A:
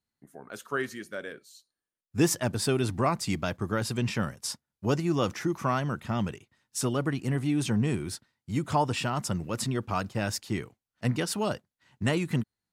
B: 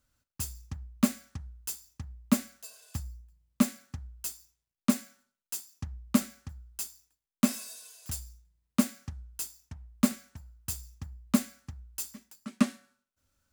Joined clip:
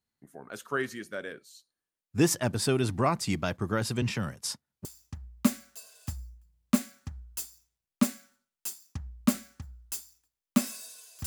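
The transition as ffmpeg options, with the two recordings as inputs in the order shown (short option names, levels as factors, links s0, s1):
-filter_complex "[0:a]asettb=1/sr,asplit=3[s0][s1][s2];[s0]atrim=end=4.024[s3];[s1]atrim=start=4.02:end=4.85,asetpts=PTS-STARTPTS,afade=t=in:d=0.004:c=qsin,afade=t=out:st=0.826:d=0.004:c=qsin,acrossover=split=170|3000[s4][s5][s6];[s5]acompressor=threshold=0.0316:ratio=6:attack=3.2:release=140:knee=2.83:detection=peak[s7];[s4][s7][s6]amix=inputs=3:normalize=0[s8];[s2]atrim=start=4.846[s9];[s3][s8]acrossfade=d=0.004:c1=hsin:c2=qsin[s10];[s10][s9]acrossfade=d=0.004:c1=qsin:c2=hsin,apad=whole_dur=11.26,atrim=end=11.26,atrim=end=4.852[s11];[1:a]atrim=start=1.718:end=8.13[s12];[s11][s12]acrossfade=d=0.004:c1=hsin:c2=hsin"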